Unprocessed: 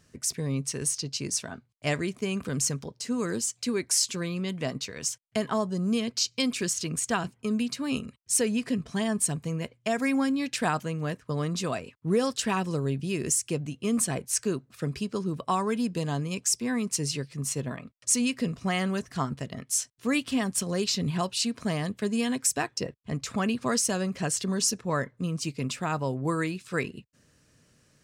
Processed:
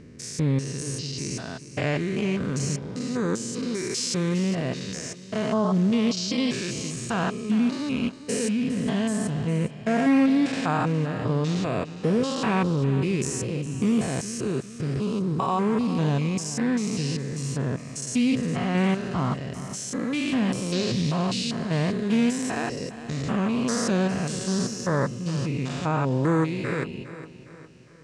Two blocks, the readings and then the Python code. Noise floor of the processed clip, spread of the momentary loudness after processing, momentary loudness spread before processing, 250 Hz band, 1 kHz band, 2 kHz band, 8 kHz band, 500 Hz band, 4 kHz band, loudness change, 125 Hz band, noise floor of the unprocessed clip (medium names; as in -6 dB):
-42 dBFS, 8 LU, 7 LU, +5.5 dB, +3.0 dB, +2.0 dB, -5.5 dB, +3.5 dB, -0.5 dB, +3.0 dB, +6.0 dB, -66 dBFS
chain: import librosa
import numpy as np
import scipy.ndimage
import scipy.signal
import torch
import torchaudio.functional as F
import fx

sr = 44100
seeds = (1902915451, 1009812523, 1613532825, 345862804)

p1 = fx.spec_steps(x, sr, hold_ms=200)
p2 = fx.air_absorb(p1, sr, metres=73.0)
p3 = p2 + fx.echo_feedback(p2, sr, ms=408, feedback_pct=46, wet_db=-14.0, dry=0)
p4 = fx.doppler_dist(p3, sr, depth_ms=0.12)
y = F.gain(torch.from_numpy(p4), 7.5).numpy()